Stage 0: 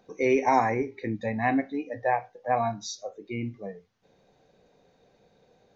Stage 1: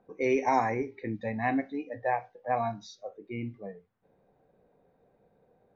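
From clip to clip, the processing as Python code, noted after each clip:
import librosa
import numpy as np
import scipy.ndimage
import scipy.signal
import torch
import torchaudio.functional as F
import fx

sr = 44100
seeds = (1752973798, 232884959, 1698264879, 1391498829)

y = fx.env_lowpass(x, sr, base_hz=1400.0, full_db=-21.0)
y = y * librosa.db_to_amplitude(-3.5)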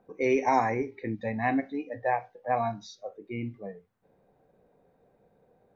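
y = fx.end_taper(x, sr, db_per_s=490.0)
y = y * librosa.db_to_amplitude(1.5)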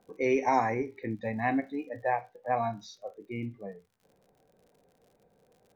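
y = fx.dmg_crackle(x, sr, seeds[0], per_s=68.0, level_db=-51.0)
y = y * librosa.db_to_amplitude(-1.5)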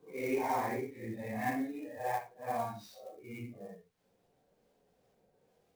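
y = fx.phase_scramble(x, sr, seeds[1], window_ms=200)
y = fx.clock_jitter(y, sr, seeds[2], jitter_ms=0.02)
y = y * librosa.db_to_amplitude(-6.0)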